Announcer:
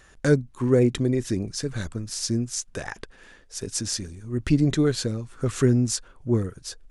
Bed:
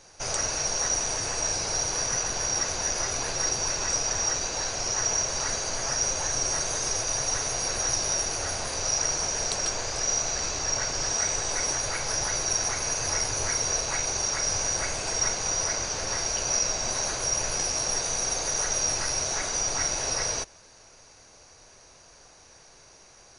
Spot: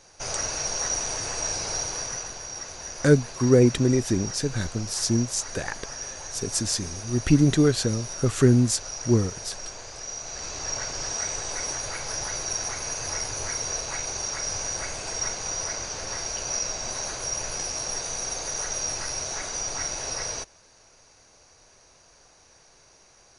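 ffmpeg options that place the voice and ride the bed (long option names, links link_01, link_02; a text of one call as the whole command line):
ffmpeg -i stem1.wav -i stem2.wav -filter_complex "[0:a]adelay=2800,volume=2dB[link_01];[1:a]volume=5.5dB,afade=type=out:start_time=1.71:duration=0.71:silence=0.375837,afade=type=in:start_time=10.2:duration=0.47:silence=0.473151[link_02];[link_01][link_02]amix=inputs=2:normalize=0" out.wav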